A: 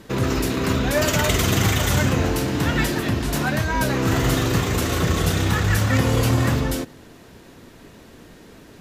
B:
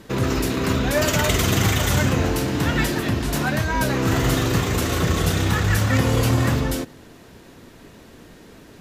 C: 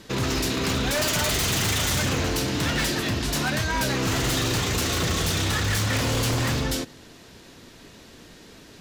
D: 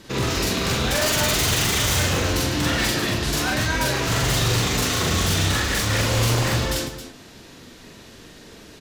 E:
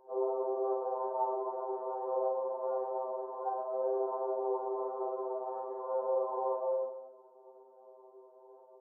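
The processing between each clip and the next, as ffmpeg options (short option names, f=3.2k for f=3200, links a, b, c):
-af anull
-af "equalizer=f=4.7k:w=0.61:g=8.5,aeval=exprs='0.178*(abs(mod(val(0)/0.178+3,4)-2)-1)':c=same,volume=-3.5dB"
-af "aecho=1:1:43.73|148.7|268.2:1|0.251|0.282"
-af "asuperpass=centerf=630:order=12:qfactor=1,afftfilt=real='re*2.45*eq(mod(b,6),0)':imag='im*2.45*eq(mod(b,6),0)':win_size=2048:overlap=0.75,volume=-2dB"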